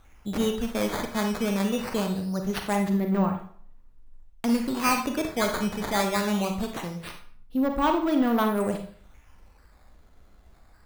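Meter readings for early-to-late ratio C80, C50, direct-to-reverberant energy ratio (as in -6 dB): 11.5 dB, 7.0 dB, 4.0 dB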